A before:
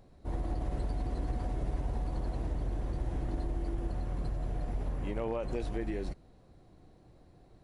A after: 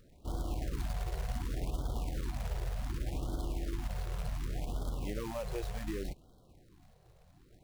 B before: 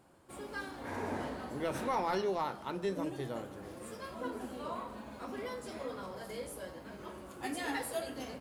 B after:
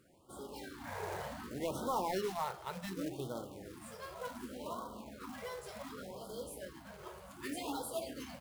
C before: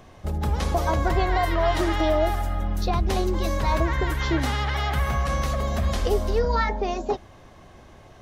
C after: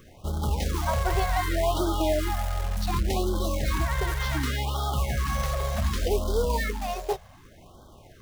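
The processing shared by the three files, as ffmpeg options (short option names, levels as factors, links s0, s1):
-af "acrusher=bits=3:mode=log:mix=0:aa=0.000001,acontrast=73,afftfilt=real='re*(1-between(b*sr/1024,240*pow(2200/240,0.5+0.5*sin(2*PI*0.67*pts/sr))/1.41,240*pow(2200/240,0.5+0.5*sin(2*PI*0.67*pts/sr))*1.41))':imag='im*(1-between(b*sr/1024,240*pow(2200/240,0.5+0.5*sin(2*PI*0.67*pts/sr))/1.41,240*pow(2200/240,0.5+0.5*sin(2*PI*0.67*pts/sr))*1.41))':win_size=1024:overlap=0.75,volume=0.355"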